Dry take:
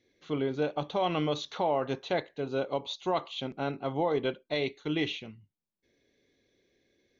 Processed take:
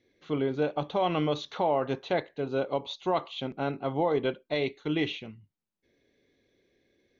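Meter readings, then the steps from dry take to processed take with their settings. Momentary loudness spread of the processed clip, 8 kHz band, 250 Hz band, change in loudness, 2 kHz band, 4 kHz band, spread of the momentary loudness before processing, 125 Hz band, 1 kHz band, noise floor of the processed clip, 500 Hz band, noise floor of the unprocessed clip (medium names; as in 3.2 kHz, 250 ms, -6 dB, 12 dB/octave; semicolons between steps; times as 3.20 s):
6 LU, no reading, +2.0 dB, +1.5 dB, +1.0 dB, -0.5 dB, 5 LU, +2.0 dB, +2.0 dB, -82 dBFS, +2.0 dB, -84 dBFS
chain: treble shelf 6.1 kHz -11.5 dB; trim +2 dB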